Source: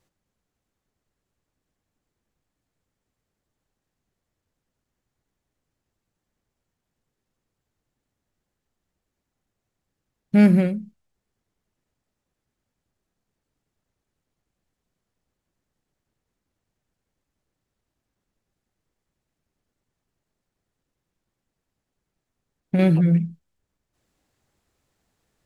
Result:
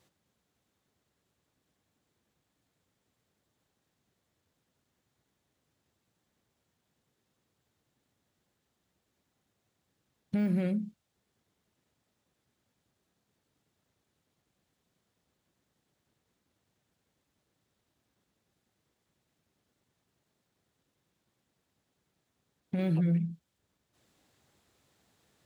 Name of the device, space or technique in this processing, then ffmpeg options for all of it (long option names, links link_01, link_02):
broadcast voice chain: -af "highpass=86,deesser=0.95,acompressor=threshold=-27dB:ratio=3,equalizer=frequency=3600:width_type=o:width=0.49:gain=4,alimiter=level_in=0.5dB:limit=-24dB:level=0:latency=1:release=169,volume=-0.5dB,volume=3dB"